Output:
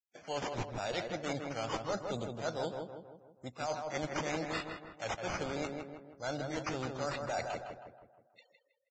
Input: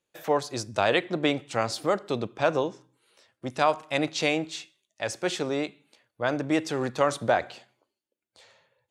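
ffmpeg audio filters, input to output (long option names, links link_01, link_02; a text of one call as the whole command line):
ffmpeg -i in.wav -filter_complex "[0:a]afftfilt=real='re*gte(hypot(re,im),0.00562)':imag='im*gte(hypot(re,im),0.00562)':win_size=1024:overlap=0.75,equalizer=frequency=4900:width=3:gain=13.5,aecho=1:1:1.4:0.41,adynamicequalizer=threshold=0.01:dfrequency=2300:dqfactor=1.2:tfrequency=2300:tqfactor=1.2:attack=5:release=100:ratio=0.375:range=2.5:mode=cutabove:tftype=bell,areverse,acompressor=threshold=-29dB:ratio=10,areverse,acrusher=samples=9:mix=1:aa=0.000001:lfo=1:lforange=5.4:lforate=0.79,aeval=exprs='0.0944*(cos(1*acos(clip(val(0)/0.0944,-1,1)))-cos(1*PI/2))+0.0015*(cos(3*acos(clip(val(0)/0.0944,-1,1)))-cos(3*PI/2))+0.00133*(cos(4*acos(clip(val(0)/0.0944,-1,1)))-cos(4*PI/2))+0.000841*(cos(5*acos(clip(val(0)/0.0944,-1,1)))-cos(5*PI/2))':channel_layout=same,asplit=2[link_01][link_02];[link_02]adelay=160,lowpass=frequency=1900:poles=1,volume=-4dB,asplit=2[link_03][link_04];[link_04]adelay=160,lowpass=frequency=1900:poles=1,volume=0.51,asplit=2[link_05][link_06];[link_06]adelay=160,lowpass=frequency=1900:poles=1,volume=0.51,asplit=2[link_07][link_08];[link_08]adelay=160,lowpass=frequency=1900:poles=1,volume=0.51,asplit=2[link_09][link_10];[link_10]adelay=160,lowpass=frequency=1900:poles=1,volume=0.51,asplit=2[link_11][link_12];[link_12]adelay=160,lowpass=frequency=1900:poles=1,volume=0.51,asplit=2[link_13][link_14];[link_14]adelay=160,lowpass=frequency=1900:poles=1,volume=0.51[link_15];[link_03][link_05][link_07][link_09][link_11][link_13][link_15]amix=inputs=7:normalize=0[link_16];[link_01][link_16]amix=inputs=2:normalize=0,aresample=16000,aresample=44100,volume=-4.5dB" -ar 22050 -c:a libvorbis -b:a 16k out.ogg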